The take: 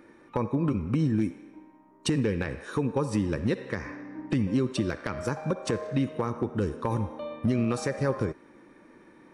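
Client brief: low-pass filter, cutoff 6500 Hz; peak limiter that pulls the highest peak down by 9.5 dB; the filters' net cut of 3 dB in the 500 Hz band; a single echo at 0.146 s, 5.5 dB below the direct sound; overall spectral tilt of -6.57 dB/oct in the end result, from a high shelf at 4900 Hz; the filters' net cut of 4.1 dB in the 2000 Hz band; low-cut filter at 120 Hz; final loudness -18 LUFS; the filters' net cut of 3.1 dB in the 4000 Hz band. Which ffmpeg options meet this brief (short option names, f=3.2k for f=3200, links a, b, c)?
-af "highpass=120,lowpass=6.5k,equalizer=f=500:t=o:g=-3.5,equalizer=f=2k:t=o:g=-5,equalizer=f=4k:t=o:g=-6.5,highshelf=f=4.9k:g=9,alimiter=level_in=0.5dB:limit=-24dB:level=0:latency=1,volume=-0.5dB,aecho=1:1:146:0.531,volume=16.5dB"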